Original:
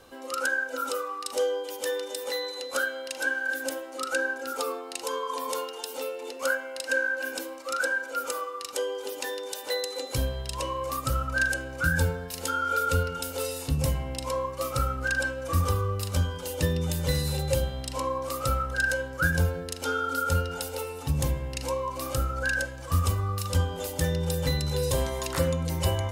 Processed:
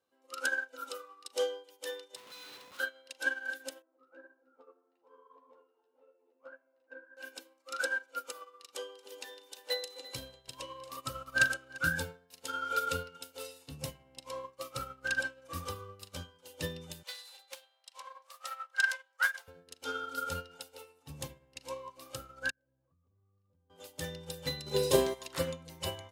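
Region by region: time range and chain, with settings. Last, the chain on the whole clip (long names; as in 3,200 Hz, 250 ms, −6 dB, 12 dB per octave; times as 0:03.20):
0:02.16–0:02.80: lower of the sound and its delayed copy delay 0.78 ms + Butterworth high-pass 200 Hz 48 dB per octave + comparator with hysteresis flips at −39.5 dBFS
0:03.82–0:07.17: low-pass filter 1,100 Hz + double-tracking delay 12 ms −6 dB + flanger 1.7 Hz, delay 5.6 ms, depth 8 ms, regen −41%
0:08.42–0:11.78: single-tap delay 344 ms −9 dB + upward compression, threshold −31 dBFS
0:17.03–0:19.48: high-pass filter 720 Hz 24 dB per octave + highs frequency-modulated by the lows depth 0.15 ms
0:22.50–0:23.70: downward compressor 10 to 1, threshold −32 dBFS + resonant band-pass 120 Hz, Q 0.64
0:24.66–0:25.14: parametric band 370 Hz +10.5 dB 1.1 octaves + comb filter 4.9 ms, depth 39% + floating-point word with a short mantissa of 4 bits
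whole clip: Bessel high-pass filter 160 Hz, order 2; dynamic equaliser 3,400 Hz, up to +6 dB, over −47 dBFS, Q 1; expander for the loud parts 2.5 to 1, over −40 dBFS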